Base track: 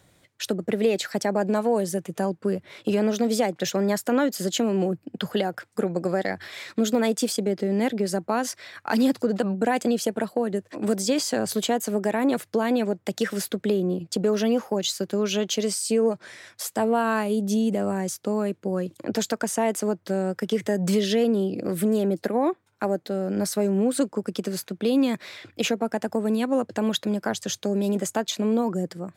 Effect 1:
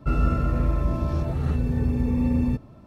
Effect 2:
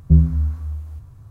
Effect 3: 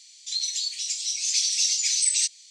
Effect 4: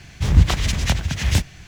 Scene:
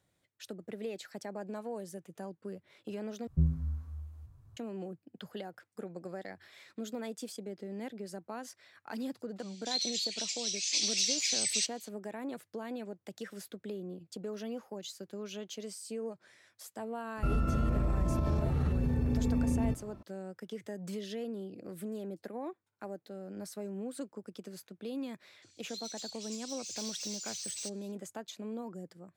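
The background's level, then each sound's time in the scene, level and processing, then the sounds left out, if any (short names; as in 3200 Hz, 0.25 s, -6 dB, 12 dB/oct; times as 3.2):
base track -17.5 dB
3.27 replace with 2 -15 dB
9.39 add 3 -2 dB + band-pass 2100 Hz, Q 0.67
17.17 add 1 -3 dB + compressor, threshold -22 dBFS
25.42 add 3 -15 dB + soft clip -20.5 dBFS
not used: 4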